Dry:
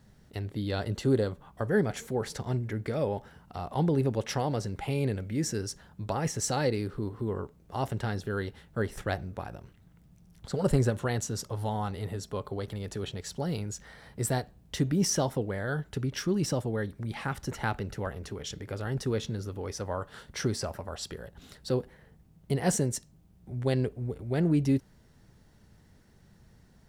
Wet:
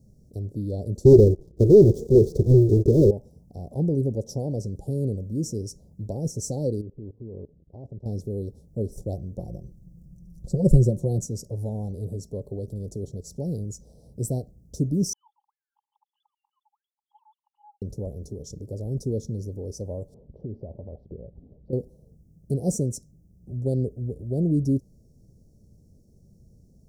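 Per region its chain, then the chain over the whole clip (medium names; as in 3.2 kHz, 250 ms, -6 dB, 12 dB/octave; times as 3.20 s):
1.05–3.11 s: square wave that keeps the level + FFT filter 110 Hz 0 dB, 260 Hz -4 dB, 370 Hz +12 dB, 700 Hz -15 dB, 1.6 kHz +3 dB, 2.4 kHz -4 dB, 3.5 kHz -1 dB, 5.9 kHz -15 dB, 12 kHz -20 dB + waveshaping leveller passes 2
6.81–8.06 s: low-pass 1.9 kHz + level held to a coarse grid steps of 20 dB
9.37–11.26 s: bass shelf 120 Hz +9 dB + comb 5.7 ms, depth 61%
15.13–17.82 s: formants replaced by sine waves + brick-wall FIR high-pass 810 Hz
20.14–21.73 s: steep low-pass 2.2 kHz + compression 4:1, threshold -34 dBFS
whole clip: elliptic band-stop 580–5700 Hz, stop band 60 dB; bass shelf 480 Hz +6 dB; trim -1.5 dB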